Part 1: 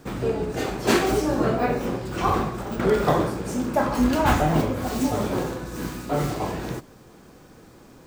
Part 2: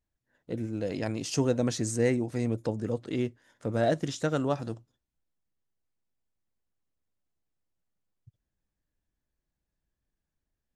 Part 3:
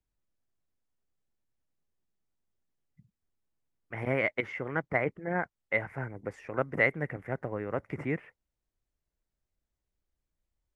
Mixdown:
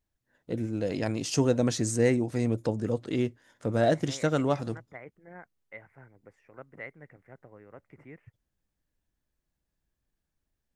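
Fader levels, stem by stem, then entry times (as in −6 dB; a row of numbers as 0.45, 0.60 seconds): muted, +2.0 dB, −16.5 dB; muted, 0.00 s, 0.00 s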